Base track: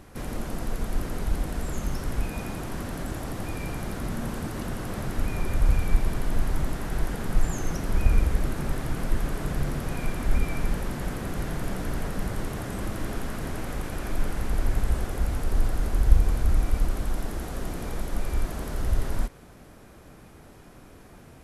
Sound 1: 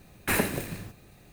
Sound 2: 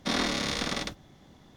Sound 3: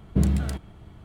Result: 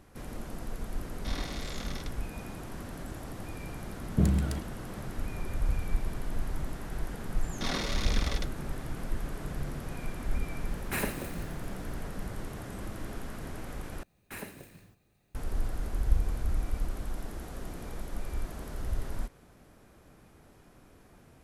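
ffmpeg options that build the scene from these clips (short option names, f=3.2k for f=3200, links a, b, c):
-filter_complex "[2:a]asplit=2[a][b];[1:a]asplit=2[c][d];[0:a]volume=-8dB[e];[b]aphaser=in_gain=1:out_gain=1:delay=2.4:decay=0.37:speed=1.8:type=triangular[f];[e]asplit=2[g][h];[g]atrim=end=14.034[i];[d]atrim=end=1.32,asetpts=PTS-STARTPTS,volume=-16.5dB[j];[h]atrim=start=15.346[k];[a]atrim=end=1.56,asetpts=PTS-STARTPTS,volume=-12dB,afade=t=in:d=0.004:c=hsin,afade=t=out:st=1.556:d=0.004:c=hsin,adelay=1190[l];[3:a]atrim=end=1.04,asetpts=PTS-STARTPTS,volume=-3.5dB,afade=t=in:d=0.004:c=hsin,afade=t=out:st=1.036:d=0.004:c=hsin,adelay=4020[m];[f]atrim=end=1.56,asetpts=PTS-STARTPTS,volume=-6dB,afade=t=in:d=0.004:c=hsin,afade=t=out:st=1.556:d=0.004:c=hsin,adelay=7550[n];[c]atrim=end=1.32,asetpts=PTS-STARTPTS,volume=-7dB,afade=t=in:d=0.004:c=hsin,afade=t=out:st=1.316:d=0.004:c=hsin,adelay=10640[o];[i][j]acrossfade=d=0.004:c1=hsin:c2=hsin[p];[p][k]acrossfade=d=0.004:c1=hsin:c2=hsin[q];[q][l][m][n][o]amix=inputs=5:normalize=0"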